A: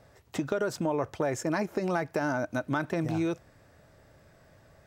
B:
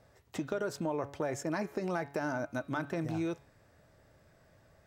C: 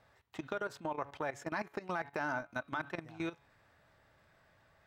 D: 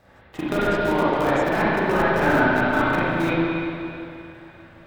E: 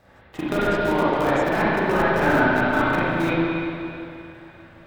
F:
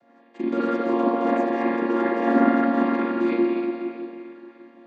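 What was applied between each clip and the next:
de-hum 141 Hz, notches 31; gain -5 dB
band shelf 1800 Hz +8.5 dB 2.7 oct; level quantiser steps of 16 dB; gain -3.5 dB
in parallel at -5 dB: sample-rate reducer 1300 Hz, jitter 20%; on the sum: reverb RT60 2.7 s, pre-delay 35 ms, DRR -10.5 dB; gain +7 dB
nothing audible
chord vocoder minor triad, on A#3

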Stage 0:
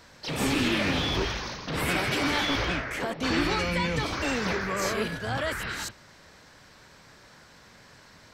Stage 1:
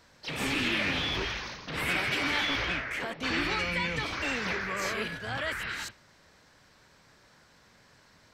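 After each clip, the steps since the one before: dynamic EQ 2300 Hz, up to +8 dB, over -44 dBFS, Q 0.81; gain -7 dB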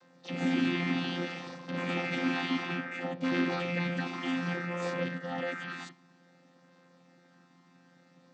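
chord vocoder bare fifth, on F3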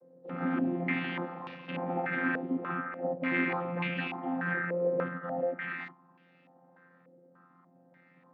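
air absorption 110 m; stepped low-pass 3.4 Hz 490–2700 Hz; gain -2.5 dB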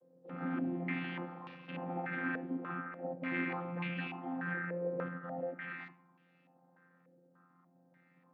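shoebox room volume 2800 m³, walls furnished, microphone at 0.53 m; gain -7 dB

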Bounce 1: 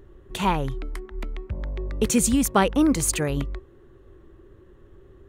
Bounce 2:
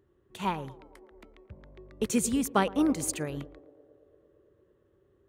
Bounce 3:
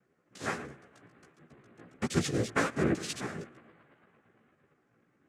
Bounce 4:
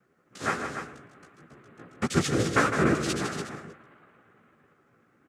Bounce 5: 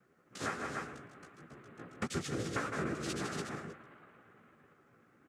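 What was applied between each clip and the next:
HPF 87 Hz 12 dB/oct; narrowing echo 0.113 s, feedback 85%, band-pass 490 Hz, level -12.5 dB; upward expander 1.5:1, over -35 dBFS; gain -5 dB
noise vocoder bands 3; chorus voices 2, 1.4 Hz, delay 15 ms, depth 3 ms; notch 940 Hz, Q 7.1
bell 1300 Hz +6 dB 0.39 oct; on a send: loudspeakers at several distances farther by 54 m -8 dB, 99 m -9 dB; on the sum: gain +4 dB
compressor 5:1, threshold -33 dBFS, peak gain reduction 14 dB; gain -1.5 dB

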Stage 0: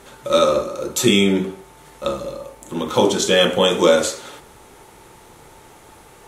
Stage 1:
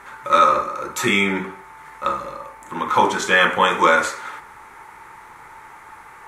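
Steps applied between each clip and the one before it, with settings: band shelf 1400 Hz +15.5 dB; gain -6.5 dB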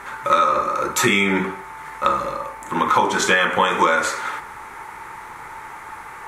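compressor 10:1, threshold -19 dBFS, peak gain reduction 10.5 dB; gain +6 dB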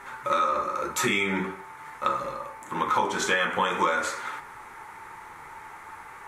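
flange 0.45 Hz, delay 7.2 ms, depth 5.9 ms, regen -47%; gain -3.5 dB

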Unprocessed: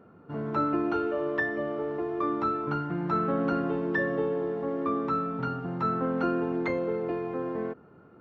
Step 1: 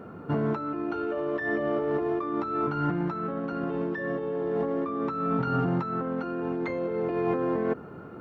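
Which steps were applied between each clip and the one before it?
negative-ratio compressor -35 dBFS, ratio -1; gain +6 dB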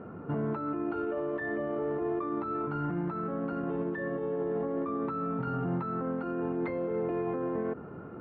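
limiter -23.5 dBFS, peak gain reduction 7.5 dB; air absorption 410 m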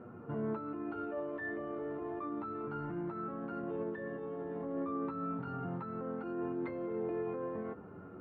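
flange 0.3 Hz, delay 8.2 ms, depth 2.9 ms, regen +40%; gain -2.5 dB

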